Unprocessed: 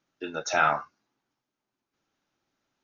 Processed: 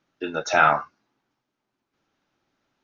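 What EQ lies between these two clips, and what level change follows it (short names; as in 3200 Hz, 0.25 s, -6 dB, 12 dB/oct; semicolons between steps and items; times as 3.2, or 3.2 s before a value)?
air absorption 88 m; +6.0 dB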